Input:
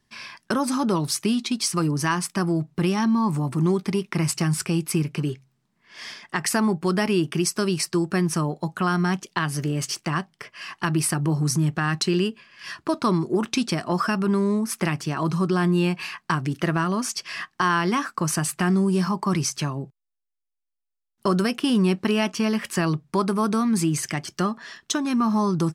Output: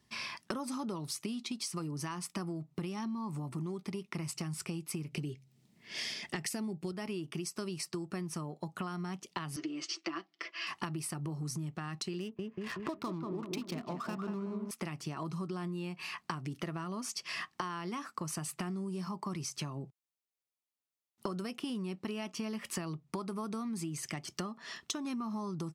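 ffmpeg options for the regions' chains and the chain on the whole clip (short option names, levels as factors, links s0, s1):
-filter_complex "[0:a]asettb=1/sr,asplit=3[s0][s1][s2];[s0]atrim=end=5.124[s3];[s1]atrim=start=5.12:end=6.92,asetpts=PTS-STARTPTS,afade=t=in:d=0.004:c=qsin,afade=t=out:st=1.796:d=0.004:c=qsin,equalizer=f=1100:t=o:w=0.93:g=-12.5,acontrast=67[s4];[s2]atrim=start=6.916[s5];[s3][s4]acrossfade=d=0.004:c1=hsin:c2=qsin[s6];[s6][s5]acrossfade=d=0.004:c1=qsin:c2=hsin,asettb=1/sr,asplit=3[s7][s8][s9];[s7]atrim=end=9.564[s10];[s8]atrim=start=9.56:end=10.67,asetpts=PTS-STARTPTS,afade=t=in:d=0.004:c=qsin,afade=t=out:st=1.106:d=0.004:c=qsin,highpass=f=320:w=0.5412,highpass=f=320:w=1.3066,equalizer=f=320:t=q:w=4:g=10,equalizer=f=460:t=q:w=4:g=-10,equalizer=f=890:t=q:w=4:g=-9,lowpass=f=5500:w=0.5412,lowpass=f=5500:w=1.3066,aecho=1:1:6:0.63,atrim=end_sample=48951[s11];[s9]atrim=start=10.666[s12];[s10][s11]acrossfade=d=0.004:c1=hsin:c2=qsin[s13];[s13][s12]acrossfade=d=0.004:c1=qsin:c2=hsin,asettb=1/sr,asplit=3[s14][s15][s16];[s14]atrim=end=12.204[s17];[s15]atrim=start=12.2:end=14.71,asetpts=PTS-STARTPTS,afade=t=in:d=0.004:c=qsin,afade=t=out:st=2.506:d=0.004:c=qsin,adynamicsmooth=sensitivity=6:basefreq=740,asplit=2[s18][s19];[s19]adelay=187,lowpass=f=1400:p=1,volume=0.596,asplit=2[s20][s21];[s21]adelay=187,lowpass=f=1400:p=1,volume=0.49,asplit=2[s22][s23];[s23]adelay=187,lowpass=f=1400:p=1,volume=0.49,asplit=2[s24][s25];[s25]adelay=187,lowpass=f=1400:p=1,volume=0.49,asplit=2[s26][s27];[s27]adelay=187,lowpass=f=1400:p=1,volume=0.49,asplit=2[s28][s29];[s29]adelay=187,lowpass=f=1400:p=1,volume=0.49[s30];[s18][s20][s22][s24][s26][s28][s30]amix=inputs=7:normalize=0,atrim=end_sample=110691[s31];[s16]atrim=start=14.706[s32];[s17][s31]acrossfade=d=0.004:c1=hsin:c2=qsin[s33];[s33][s32]acrossfade=d=0.004:c1=qsin:c2=hsin,highpass=48,equalizer=f=1600:w=8:g=-9,acompressor=threshold=0.0178:ratio=16"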